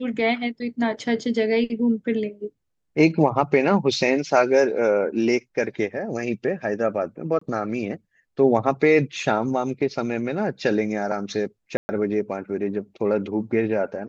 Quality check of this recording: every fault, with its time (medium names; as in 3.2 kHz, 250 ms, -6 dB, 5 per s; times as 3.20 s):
7.39–7.41 s: dropout 24 ms
11.77–11.89 s: dropout 120 ms